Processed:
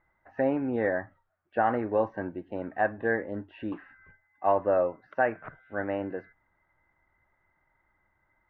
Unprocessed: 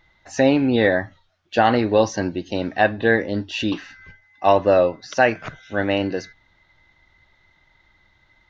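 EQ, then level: low-pass 1.7 kHz 24 dB/octave; bass shelf 340 Hz -7 dB; -7.0 dB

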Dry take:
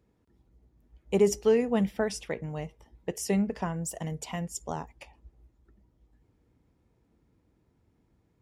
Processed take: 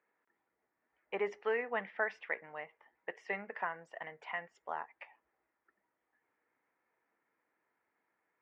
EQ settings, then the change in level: high-pass 770 Hz 12 dB/octave; four-pole ladder low-pass 2.2 kHz, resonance 50%; +7.5 dB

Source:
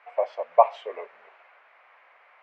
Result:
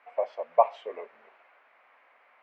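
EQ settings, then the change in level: peaking EQ 230 Hz +12 dB 1.1 oct; -5.0 dB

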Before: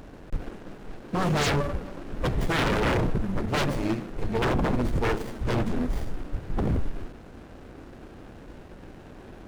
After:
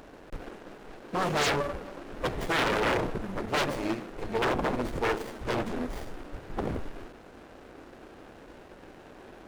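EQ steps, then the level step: tone controls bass -11 dB, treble -1 dB; 0.0 dB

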